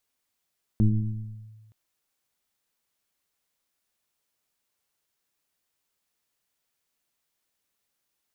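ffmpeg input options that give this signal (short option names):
-f lavfi -i "aevalsrc='0.188*pow(10,-3*t/1.41)*sin(2*PI*109*t+1.2*clip(1-t/0.77,0,1)*sin(2*PI*0.96*109*t))':d=0.92:s=44100"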